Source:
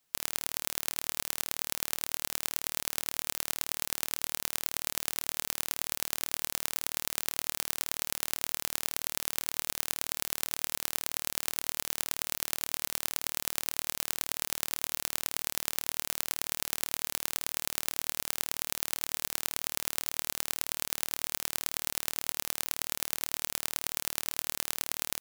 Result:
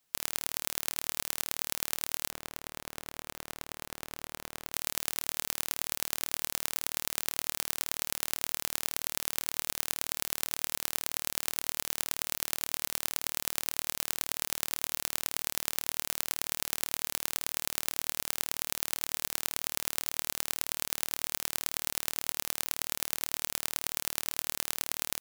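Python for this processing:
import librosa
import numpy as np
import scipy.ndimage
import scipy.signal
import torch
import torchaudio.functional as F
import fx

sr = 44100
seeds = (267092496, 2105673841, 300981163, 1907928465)

y = fx.high_shelf(x, sr, hz=2400.0, db=-12.0, at=(2.3, 4.73))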